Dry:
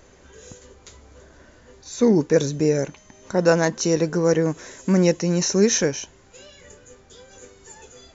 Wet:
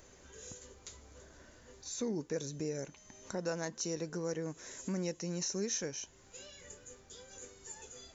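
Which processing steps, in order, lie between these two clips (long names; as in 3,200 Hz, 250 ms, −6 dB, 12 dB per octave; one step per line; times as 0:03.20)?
high-shelf EQ 5,500 Hz +10.5 dB
downward compressor 2 to 1, threshold −34 dBFS, peak gain reduction 12.5 dB
level −8.5 dB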